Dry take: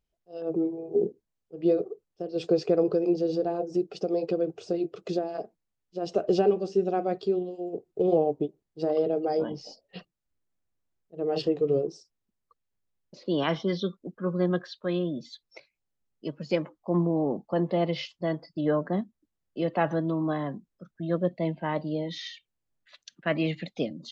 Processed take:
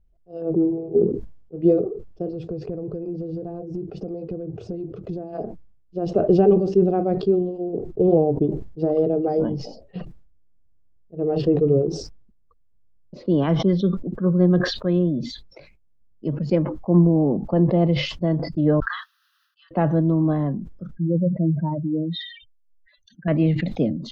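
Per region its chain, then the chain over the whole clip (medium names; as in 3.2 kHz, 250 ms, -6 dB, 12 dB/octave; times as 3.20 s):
2.33–5.33 s: peaking EQ 94 Hz +9.5 dB 1.9 oct + compression 4:1, threshold -37 dBFS
18.80–19.71 s: steep high-pass 1.3 kHz 48 dB/octave + static phaser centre 2.2 kHz, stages 6
20.95–23.28 s: spectral contrast enhancement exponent 3.2 + peaking EQ 670 Hz -8.5 dB 0.55 oct
whole clip: tilt EQ -4.5 dB/octave; decay stretcher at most 75 dB/s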